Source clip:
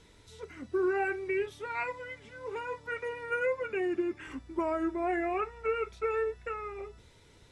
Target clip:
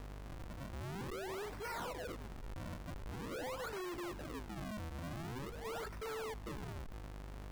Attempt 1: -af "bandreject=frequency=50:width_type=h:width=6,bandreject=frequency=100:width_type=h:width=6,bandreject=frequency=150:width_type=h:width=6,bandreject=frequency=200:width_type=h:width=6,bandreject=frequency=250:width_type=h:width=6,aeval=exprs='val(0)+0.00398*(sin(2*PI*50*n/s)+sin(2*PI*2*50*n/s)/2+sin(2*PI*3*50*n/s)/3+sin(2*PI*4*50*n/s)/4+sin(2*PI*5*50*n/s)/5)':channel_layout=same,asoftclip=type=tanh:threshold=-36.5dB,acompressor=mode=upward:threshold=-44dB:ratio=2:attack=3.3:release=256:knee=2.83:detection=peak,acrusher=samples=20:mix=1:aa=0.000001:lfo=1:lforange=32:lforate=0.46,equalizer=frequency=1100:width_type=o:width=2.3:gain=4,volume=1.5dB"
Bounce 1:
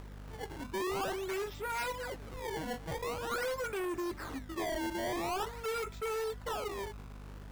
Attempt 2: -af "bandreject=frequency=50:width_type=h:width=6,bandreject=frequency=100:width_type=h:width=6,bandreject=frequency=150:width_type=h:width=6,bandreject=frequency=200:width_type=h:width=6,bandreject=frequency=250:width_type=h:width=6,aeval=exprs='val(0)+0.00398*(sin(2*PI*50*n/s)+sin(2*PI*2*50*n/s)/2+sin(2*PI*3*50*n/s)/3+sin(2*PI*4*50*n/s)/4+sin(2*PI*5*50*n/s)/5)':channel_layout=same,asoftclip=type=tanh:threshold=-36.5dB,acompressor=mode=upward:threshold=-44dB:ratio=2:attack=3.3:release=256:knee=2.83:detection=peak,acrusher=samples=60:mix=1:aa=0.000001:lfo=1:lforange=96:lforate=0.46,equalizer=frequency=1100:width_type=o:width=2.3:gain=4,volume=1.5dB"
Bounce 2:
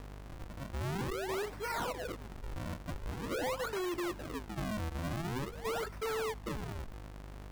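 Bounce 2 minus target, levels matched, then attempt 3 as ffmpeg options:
soft clipping: distortion −5 dB
-af "bandreject=frequency=50:width_type=h:width=6,bandreject=frequency=100:width_type=h:width=6,bandreject=frequency=150:width_type=h:width=6,bandreject=frequency=200:width_type=h:width=6,bandreject=frequency=250:width_type=h:width=6,aeval=exprs='val(0)+0.00398*(sin(2*PI*50*n/s)+sin(2*PI*2*50*n/s)/2+sin(2*PI*3*50*n/s)/3+sin(2*PI*4*50*n/s)/4+sin(2*PI*5*50*n/s)/5)':channel_layout=same,asoftclip=type=tanh:threshold=-46dB,acompressor=mode=upward:threshold=-44dB:ratio=2:attack=3.3:release=256:knee=2.83:detection=peak,acrusher=samples=60:mix=1:aa=0.000001:lfo=1:lforange=96:lforate=0.46,equalizer=frequency=1100:width_type=o:width=2.3:gain=4,volume=1.5dB"

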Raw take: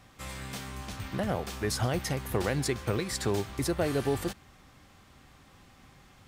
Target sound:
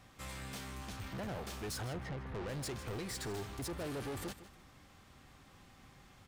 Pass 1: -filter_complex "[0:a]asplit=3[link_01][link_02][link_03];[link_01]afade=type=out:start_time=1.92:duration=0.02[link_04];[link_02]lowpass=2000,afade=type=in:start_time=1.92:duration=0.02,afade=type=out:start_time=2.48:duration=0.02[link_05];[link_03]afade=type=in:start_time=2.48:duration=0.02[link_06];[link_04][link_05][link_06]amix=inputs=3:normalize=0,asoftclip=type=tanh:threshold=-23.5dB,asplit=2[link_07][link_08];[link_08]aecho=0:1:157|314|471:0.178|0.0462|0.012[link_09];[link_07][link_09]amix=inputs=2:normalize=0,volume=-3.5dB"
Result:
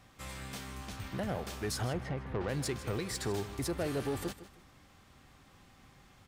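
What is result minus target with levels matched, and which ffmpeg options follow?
soft clipping: distortion −10 dB
-filter_complex "[0:a]asplit=3[link_01][link_02][link_03];[link_01]afade=type=out:start_time=1.92:duration=0.02[link_04];[link_02]lowpass=2000,afade=type=in:start_time=1.92:duration=0.02,afade=type=out:start_time=2.48:duration=0.02[link_05];[link_03]afade=type=in:start_time=2.48:duration=0.02[link_06];[link_04][link_05][link_06]amix=inputs=3:normalize=0,asoftclip=type=tanh:threshold=-34.5dB,asplit=2[link_07][link_08];[link_08]aecho=0:1:157|314|471:0.178|0.0462|0.012[link_09];[link_07][link_09]amix=inputs=2:normalize=0,volume=-3.5dB"

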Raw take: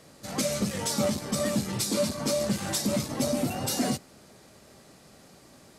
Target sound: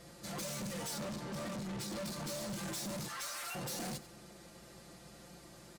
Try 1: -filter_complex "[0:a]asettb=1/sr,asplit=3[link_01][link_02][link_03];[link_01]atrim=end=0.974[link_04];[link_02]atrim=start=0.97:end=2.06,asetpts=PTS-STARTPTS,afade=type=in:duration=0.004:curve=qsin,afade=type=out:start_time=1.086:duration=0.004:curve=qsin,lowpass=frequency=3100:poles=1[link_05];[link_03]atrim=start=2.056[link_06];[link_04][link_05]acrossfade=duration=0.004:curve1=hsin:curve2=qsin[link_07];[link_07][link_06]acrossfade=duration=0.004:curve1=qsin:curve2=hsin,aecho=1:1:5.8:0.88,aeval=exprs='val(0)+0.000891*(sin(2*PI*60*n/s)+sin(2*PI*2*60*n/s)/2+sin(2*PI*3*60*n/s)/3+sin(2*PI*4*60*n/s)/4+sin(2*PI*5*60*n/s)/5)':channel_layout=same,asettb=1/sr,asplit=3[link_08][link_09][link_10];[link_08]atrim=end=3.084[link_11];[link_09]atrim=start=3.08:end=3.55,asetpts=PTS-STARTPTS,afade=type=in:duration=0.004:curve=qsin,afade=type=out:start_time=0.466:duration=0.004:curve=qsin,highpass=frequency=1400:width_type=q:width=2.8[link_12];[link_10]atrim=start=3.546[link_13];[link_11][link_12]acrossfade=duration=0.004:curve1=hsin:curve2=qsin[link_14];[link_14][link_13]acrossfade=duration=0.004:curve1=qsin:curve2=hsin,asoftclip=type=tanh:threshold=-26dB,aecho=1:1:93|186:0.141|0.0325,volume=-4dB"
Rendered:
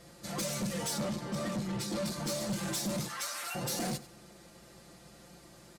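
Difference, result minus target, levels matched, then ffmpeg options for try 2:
soft clipping: distortion −5 dB
-filter_complex "[0:a]asettb=1/sr,asplit=3[link_01][link_02][link_03];[link_01]atrim=end=0.974[link_04];[link_02]atrim=start=0.97:end=2.06,asetpts=PTS-STARTPTS,afade=type=in:duration=0.004:curve=qsin,afade=type=out:start_time=1.086:duration=0.004:curve=qsin,lowpass=frequency=3100:poles=1[link_05];[link_03]atrim=start=2.056[link_06];[link_04][link_05]acrossfade=duration=0.004:curve1=hsin:curve2=qsin[link_07];[link_07][link_06]acrossfade=duration=0.004:curve1=qsin:curve2=hsin,aecho=1:1:5.8:0.88,aeval=exprs='val(0)+0.000891*(sin(2*PI*60*n/s)+sin(2*PI*2*60*n/s)/2+sin(2*PI*3*60*n/s)/3+sin(2*PI*4*60*n/s)/4+sin(2*PI*5*60*n/s)/5)':channel_layout=same,asettb=1/sr,asplit=3[link_08][link_09][link_10];[link_08]atrim=end=3.084[link_11];[link_09]atrim=start=3.08:end=3.55,asetpts=PTS-STARTPTS,afade=type=in:duration=0.004:curve=qsin,afade=type=out:start_time=0.466:duration=0.004:curve=qsin,highpass=frequency=1400:width_type=q:width=2.8[link_12];[link_10]atrim=start=3.546[link_13];[link_11][link_12]acrossfade=duration=0.004:curve1=hsin:curve2=qsin[link_14];[link_14][link_13]acrossfade=duration=0.004:curve1=qsin:curve2=hsin,asoftclip=type=tanh:threshold=-35dB,aecho=1:1:93|186:0.141|0.0325,volume=-4dB"

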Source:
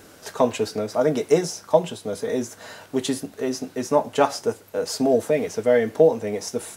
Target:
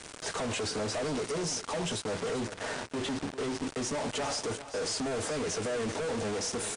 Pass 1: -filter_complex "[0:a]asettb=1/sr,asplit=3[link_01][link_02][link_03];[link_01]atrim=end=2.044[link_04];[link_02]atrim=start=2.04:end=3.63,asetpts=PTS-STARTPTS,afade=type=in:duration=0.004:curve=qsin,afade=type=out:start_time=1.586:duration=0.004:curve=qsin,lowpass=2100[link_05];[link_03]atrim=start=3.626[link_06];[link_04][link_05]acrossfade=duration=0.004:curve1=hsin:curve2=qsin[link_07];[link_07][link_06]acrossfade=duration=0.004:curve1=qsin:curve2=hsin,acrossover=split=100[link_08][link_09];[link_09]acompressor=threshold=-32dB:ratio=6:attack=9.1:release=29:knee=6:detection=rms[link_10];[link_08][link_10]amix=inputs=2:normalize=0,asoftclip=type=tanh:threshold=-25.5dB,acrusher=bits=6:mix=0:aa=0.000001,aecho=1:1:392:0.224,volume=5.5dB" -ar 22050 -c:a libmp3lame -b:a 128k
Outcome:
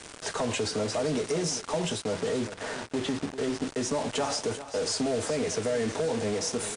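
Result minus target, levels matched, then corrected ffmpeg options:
soft clipping: distortion −9 dB
-filter_complex "[0:a]asettb=1/sr,asplit=3[link_01][link_02][link_03];[link_01]atrim=end=2.044[link_04];[link_02]atrim=start=2.04:end=3.63,asetpts=PTS-STARTPTS,afade=type=in:duration=0.004:curve=qsin,afade=type=out:start_time=1.586:duration=0.004:curve=qsin,lowpass=2100[link_05];[link_03]atrim=start=3.626[link_06];[link_04][link_05]acrossfade=duration=0.004:curve1=hsin:curve2=qsin[link_07];[link_07][link_06]acrossfade=duration=0.004:curve1=qsin:curve2=hsin,acrossover=split=100[link_08][link_09];[link_09]acompressor=threshold=-32dB:ratio=6:attack=9.1:release=29:knee=6:detection=rms[link_10];[link_08][link_10]amix=inputs=2:normalize=0,asoftclip=type=tanh:threshold=-33dB,acrusher=bits=6:mix=0:aa=0.000001,aecho=1:1:392:0.224,volume=5.5dB" -ar 22050 -c:a libmp3lame -b:a 128k

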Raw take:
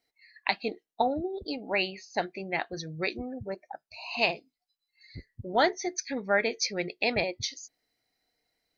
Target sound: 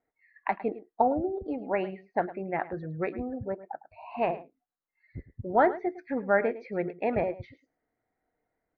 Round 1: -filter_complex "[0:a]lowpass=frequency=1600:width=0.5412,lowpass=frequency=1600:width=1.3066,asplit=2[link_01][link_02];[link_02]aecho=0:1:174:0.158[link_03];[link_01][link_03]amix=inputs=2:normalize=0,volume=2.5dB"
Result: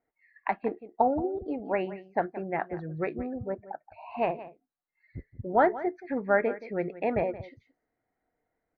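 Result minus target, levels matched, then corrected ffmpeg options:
echo 68 ms late
-filter_complex "[0:a]lowpass=frequency=1600:width=0.5412,lowpass=frequency=1600:width=1.3066,asplit=2[link_01][link_02];[link_02]aecho=0:1:106:0.158[link_03];[link_01][link_03]amix=inputs=2:normalize=0,volume=2.5dB"

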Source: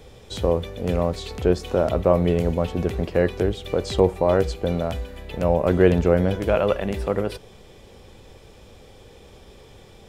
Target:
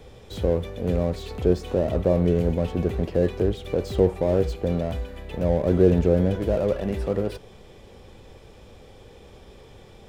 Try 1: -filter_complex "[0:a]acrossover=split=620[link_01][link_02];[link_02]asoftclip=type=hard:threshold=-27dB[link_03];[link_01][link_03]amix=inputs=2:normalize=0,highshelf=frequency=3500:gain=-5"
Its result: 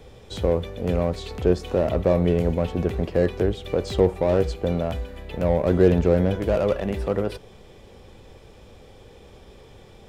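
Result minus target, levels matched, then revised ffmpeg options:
hard clipping: distortion −6 dB
-filter_complex "[0:a]acrossover=split=620[link_01][link_02];[link_02]asoftclip=type=hard:threshold=-37dB[link_03];[link_01][link_03]amix=inputs=2:normalize=0,highshelf=frequency=3500:gain=-5"

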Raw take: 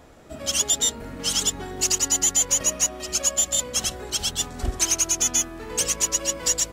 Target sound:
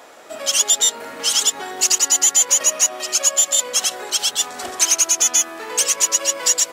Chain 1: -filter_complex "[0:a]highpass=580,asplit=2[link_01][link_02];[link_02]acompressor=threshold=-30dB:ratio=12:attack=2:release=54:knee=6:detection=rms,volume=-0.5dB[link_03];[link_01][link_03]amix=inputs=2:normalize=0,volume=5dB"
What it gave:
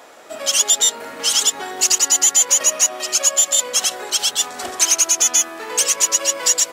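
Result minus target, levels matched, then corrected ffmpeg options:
downward compressor: peak gain reduction −5.5 dB
-filter_complex "[0:a]highpass=580,asplit=2[link_01][link_02];[link_02]acompressor=threshold=-36dB:ratio=12:attack=2:release=54:knee=6:detection=rms,volume=-0.5dB[link_03];[link_01][link_03]amix=inputs=2:normalize=0,volume=5dB"

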